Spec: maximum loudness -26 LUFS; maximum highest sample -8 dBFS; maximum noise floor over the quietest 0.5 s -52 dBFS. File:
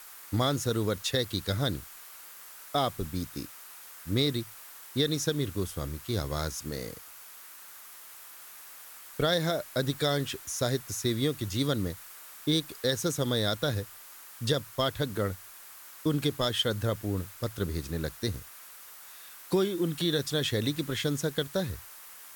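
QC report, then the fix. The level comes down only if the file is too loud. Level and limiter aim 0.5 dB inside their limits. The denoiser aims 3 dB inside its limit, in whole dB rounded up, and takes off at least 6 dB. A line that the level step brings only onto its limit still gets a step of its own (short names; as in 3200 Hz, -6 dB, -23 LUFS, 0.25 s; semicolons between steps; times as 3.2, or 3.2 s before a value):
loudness -30.5 LUFS: OK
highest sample -11.5 dBFS: OK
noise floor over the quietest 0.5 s -49 dBFS: fail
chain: denoiser 6 dB, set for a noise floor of -49 dBFS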